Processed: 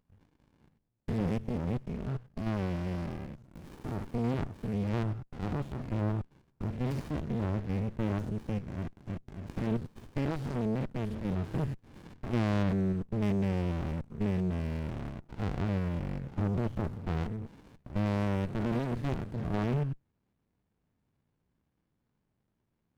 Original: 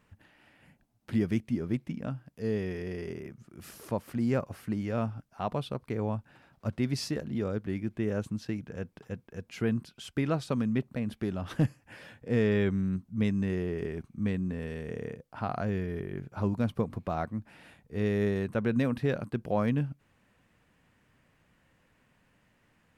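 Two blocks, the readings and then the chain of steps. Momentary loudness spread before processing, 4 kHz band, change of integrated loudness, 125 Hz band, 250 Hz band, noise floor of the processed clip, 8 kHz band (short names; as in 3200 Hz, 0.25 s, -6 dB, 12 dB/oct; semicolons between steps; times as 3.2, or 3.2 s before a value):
12 LU, -4.5 dB, -1.5 dB, +1.0 dB, -2.0 dB, -79 dBFS, n/a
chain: stepped spectrum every 0.1 s; sample leveller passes 2; running maximum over 65 samples; gain -3.5 dB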